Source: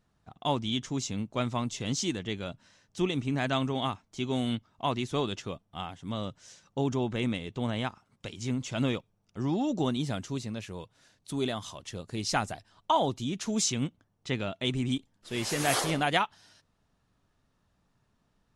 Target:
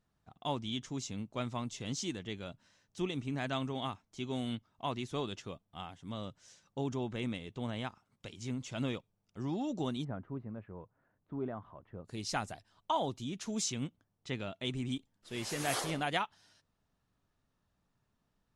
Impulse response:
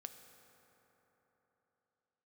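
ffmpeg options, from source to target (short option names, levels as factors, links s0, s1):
-filter_complex "[0:a]asplit=3[s0][s1][s2];[s0]afade=t=out:st=10.03:d=0.02[s3];[s1]lowpass=f=1500:w=0.5412,lowpass=f=1500:w=1.3066,afade=t=in:st=10.03:d=0.02,afade=t=out:st=12.04:d=0.02[s4];[s2]afade=t=in:st=12.04:d=0.02[s5];[s3][s4][s5]amix=inputs=3:normalize=0,volume=0.447"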